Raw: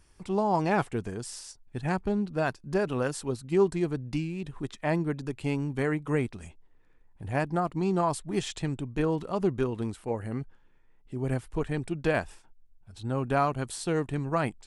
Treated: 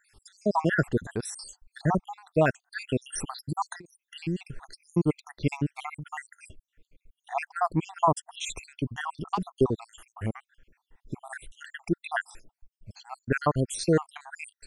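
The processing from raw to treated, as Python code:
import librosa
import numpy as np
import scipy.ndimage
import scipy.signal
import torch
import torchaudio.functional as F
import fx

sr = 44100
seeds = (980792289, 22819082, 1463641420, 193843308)

y = fx.spec_dropout(x, sr, seeds[0], share_pct=71)
y = fx.over_compress(y, sr, threshold_db=-37.0, ratio=-0.5, at=(3.12, 3.98))
y = y * librosa.db_to_amplitude(7.0)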